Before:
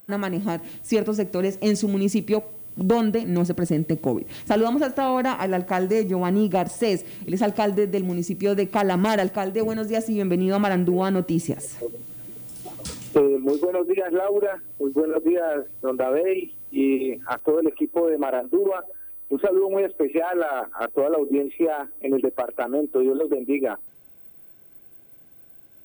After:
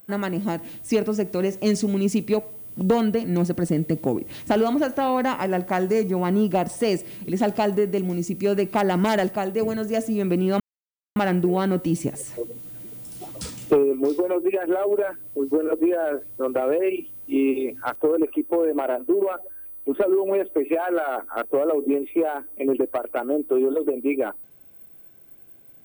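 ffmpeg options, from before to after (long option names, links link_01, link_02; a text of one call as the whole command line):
ffmpeg -i in.wav -filter_complex "[0:a]asplit=2[link_01][link_02];[link_01]atrim=end=10.6,asetpts=PTS-STARTPTS,afade=type=out:start_time=10.596:duration=0.004:curve=hsin,apad=pad_dur=0.56[link_03];[link_02]atrim=start=10.6,asetpts=PTS-STARTPTS,afade=type=in:duration=0.004:curve=hsin[link_04];[link_03][link_04]concat=n=2:v=0:a=1" out.wav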